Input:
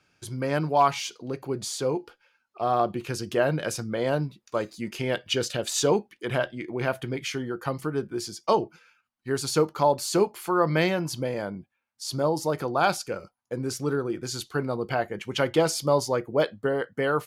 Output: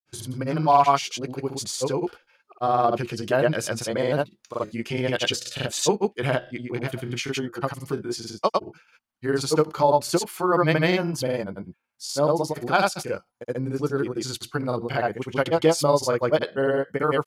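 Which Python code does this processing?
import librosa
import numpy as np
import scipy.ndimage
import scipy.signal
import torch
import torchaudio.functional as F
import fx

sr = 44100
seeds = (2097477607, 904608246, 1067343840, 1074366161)

y = fx.granulator(x, sr, seeds[0], grain_ms=100.0, per_s=20.0, spray_ms=100.0, spread_st=0)
y = y * librosa.db_to_amplitude(3.5)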